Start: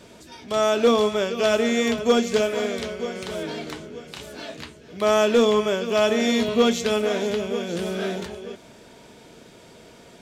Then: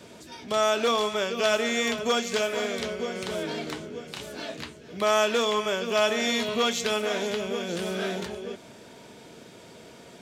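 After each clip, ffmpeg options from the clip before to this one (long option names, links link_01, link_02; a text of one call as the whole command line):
ffmpeg -i in.wav -filter_complex "[0:a]highpass=78,acrossover=split=690|3000[link_01][link_02][link_03];[link_01]acompressor=threshold=-29dB:ratio=6[link_04];[link_04][link_02][link_03]amix=inputs=3:normalize=0" out.wav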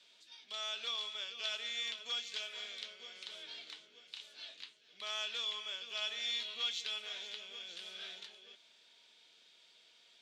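ffmpeg -i in.wav -af "bandpass=frequency=3600:width_type=q:width=2.4:csg=0,volume=-5.5dB" out.wav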